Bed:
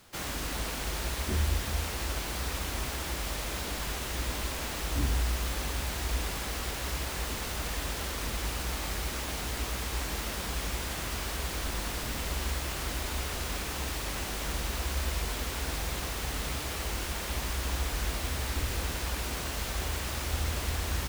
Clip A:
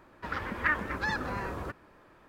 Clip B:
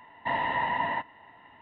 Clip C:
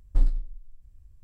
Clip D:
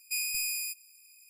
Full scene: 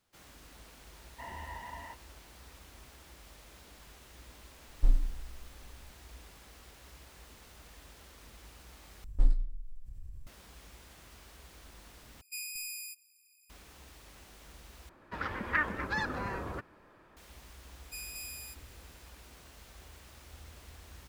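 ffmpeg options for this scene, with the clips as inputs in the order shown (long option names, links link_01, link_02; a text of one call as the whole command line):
ffmpeg -i bed.wav -i cue0.wav -i cue1.wav -i cue2.wav -i cue3.wav -filter_complex "[3:a]asplit=2[link_01][link_02];[4:a]asplit=2[link_03][link_04];[0:a]volume=-20dB[link_05];[link_02]acompressor=mode=upward:threshold=-28dB:ratio=2.5:attack=3.2:release=140:knee=2.83:detection=peak[link_06];[link_05]asplit=4[link_07][link_08][link_09][link_10];[link_07]atrim=end=9.044[link_11];[link_06]atrim=end=1.23,asetpts=PTS-STARTPTS,volume=-3.5dB[link_12];[link_08]atrim=start=10.266:end=12.214[link_13];[link_03]atrim=end=1.29,asetpts=PTS-STARTPTS,volume=-8.5dB[link_14];[link_09]atrim=start=13.496:end=14.894[link_15];[1:a]atrim=end=2.28,asetpts=PTS-STARTPTS,volume=-2dB[link_16];[link_10]atrim=start=17.166[link_17];[2:a]atrim=end=1.61,asetpts=PTS-STARTPTS,volume=-17dB,afade=type=in:duration=0.004:curve=hsin,afade=type=out:start_time=1.606:duration=0.004:curve=hsin,adelay=930[link_18];[link_01]atrim=end=1.23,asetpts=PTS-STARTPTS,volume=-3.5dB,afade=type=in:duration=0.004:curve=hsin,afade=type=out:start_time=1.226:duration=0.004:curve=hsin,adelay=4680[link_19];[link_04]atrim=end=1.29,asetpts=PTS-STARTPTS,volume=-11.5dB,afade=type=in:duration=0.004:curve=hsin,afade=type=out:start_time=1.286:duration=0.004:curve=hsin,adelay=17810[link_20];[link_11][link_12]acrossfade=duration=0.004:curve1=hsin:curve2=hsin[link_21];[link_21][link_13]acrossfade=duration=0.004:curve1=hsin:curve2=hsin[link_22];[link_22][link_14]acrossfade=duration=0.004:curve1=hsin:curve2=hsin[link_23];[link_23][link_15]acrossfade=duration=0.004:curve1=hsin:curve2=hsin[link_24];[link_24][link_16]acrossfade=duration=0.004:curve1=hsin:curve2=hsin[link_25];[link_25][link_17]acrossfade=duration=0.004:curve1=hsin:curve2=hsin[link_26];[link_26][link_18][link_19][link_20]amix=inputs=4:normalize=0" out.wav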